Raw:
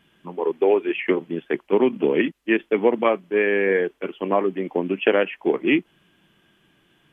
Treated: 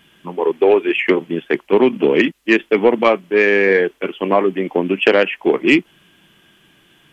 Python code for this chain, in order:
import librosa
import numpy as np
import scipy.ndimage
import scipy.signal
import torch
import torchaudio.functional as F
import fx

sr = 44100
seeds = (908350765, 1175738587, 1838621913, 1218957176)

y = fx.high_shelf(x, sr, hz=2200.0, db=6.5)
y = 10.0 ** (-6.5 / 20.0) * np.tanh(y / 10.0 ** (-6.5 / 20.0))
y = y * librosa.db_to_amplitude(6.0)